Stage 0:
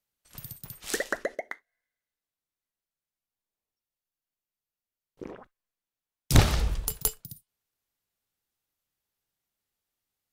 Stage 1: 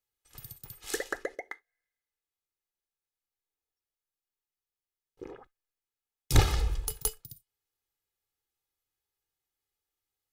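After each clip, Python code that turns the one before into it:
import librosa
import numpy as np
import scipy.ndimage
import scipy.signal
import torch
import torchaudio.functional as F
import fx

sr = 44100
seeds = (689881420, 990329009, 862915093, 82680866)

y = x + 0.62 * np.pad(x, (int(2.4 * sr / 1000.0), 0))[:len(x)]
y = y * librosa.db_to_amplitude(-5.0)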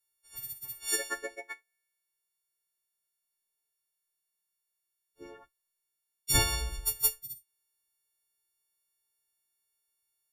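y = fx.freq_snap(x, sr, grid_st=4)
y = y * librosa.db_to_amplitude(-5.0)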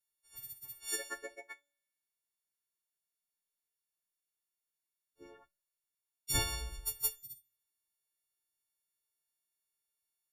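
y = fx.comb_fb(x, sr, f0_hz=95.0, decay_s=0.59, harmonics='all', damping=0.0, mix_pct=40)
y = y * librosa.db_to_amplitude(-3.0)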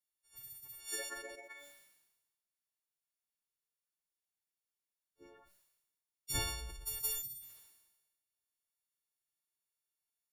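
y = fx.sustainer(x, sr, db_per_s=49.0)
y = y * librosa.db_to_amplitude(-4.5)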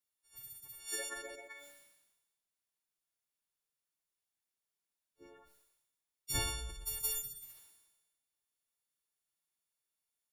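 y = fx.echo_feedback(x, sr, ms=98, feedback_pct=42, wet_db=-15.0)
y = y * librosa.db_to_amplitude(1.0)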